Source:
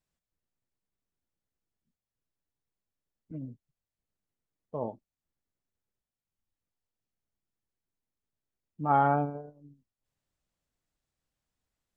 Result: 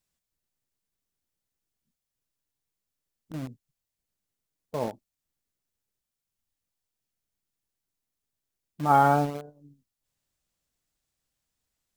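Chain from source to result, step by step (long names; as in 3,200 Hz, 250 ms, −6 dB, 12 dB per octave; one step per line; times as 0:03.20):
high-shelf EQ 2,900 Hz +8.5 dB
in parallel at −5.5 dB: bit reduction 6 bits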